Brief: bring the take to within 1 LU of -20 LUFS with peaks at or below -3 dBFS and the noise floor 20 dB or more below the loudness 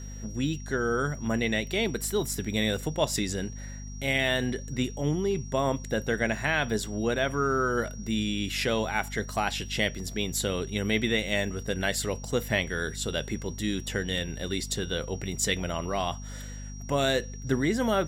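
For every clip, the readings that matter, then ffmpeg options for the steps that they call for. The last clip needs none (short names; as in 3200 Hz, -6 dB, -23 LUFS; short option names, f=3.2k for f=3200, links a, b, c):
hum 50 Hz; harmonics up to 250 Hz; hum level -37 dBFS; steady tone 5700 Hz; tone level -47 dBFS; loudness -29.0 LUFS; peak -11.0 dBFS; loudness target -20.0 LUFS
-> -af "bandreject=f=50:t=h:w=4,bandreject=f=100:t=h:w=4,bandreject=f=150:t=h:w=4,bandreject=f=200:t=h:w=4,bandreject=f=250:t=h:w=4"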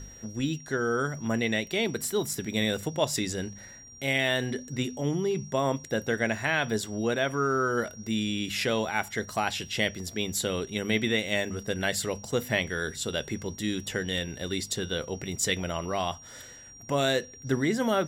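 hum none; steady tone 5700 Hz; tone level -47 dBFS
-> -af "bandreject=f=5.7k:w=30"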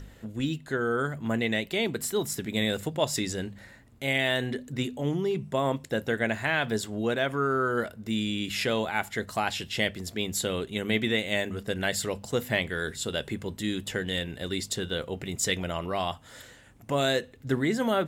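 steady tone none; loudness -29.0 LUFS; peak -11.0 dBFS; loudness target -20.0 LUFS
-> -af "volume=9dB,alimiter=limit=-3dB:level=0:latency=1"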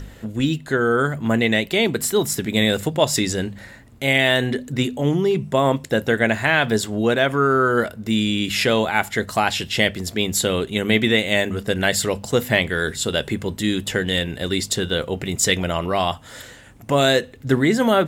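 loudness -20.0 LUFS; peak -3.0 dBFS; noise floor -43 dBFS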